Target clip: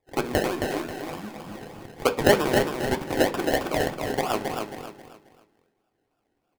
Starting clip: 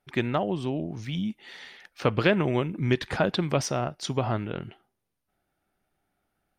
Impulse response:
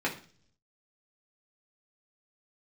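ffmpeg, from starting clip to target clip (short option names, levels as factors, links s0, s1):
-filter_complex "[0:a]highpass=440,highshelf=f=3400:t=q:w=1.5:g=-7.5,acrusher=samples=30:mix=1:aa=0.000001:lfo=1:lforange=18:lforate=3.2,aecho=1:1:269|538|807|1076:0.562|0.191|0.065|0.0221,asplit=2[s0][s1];[1:a]atrim=start_sample=2205[s2];[s1][s2]afir=irnorm=-1:irlink=0,volume=0.316[s3];[s0][s3]amix=inputs=2:normalize=0"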